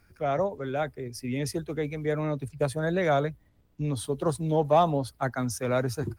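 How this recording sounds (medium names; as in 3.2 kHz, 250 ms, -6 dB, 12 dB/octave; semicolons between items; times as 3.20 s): noise floor -63 dBFS; spectral tilt -6.0 dB/octave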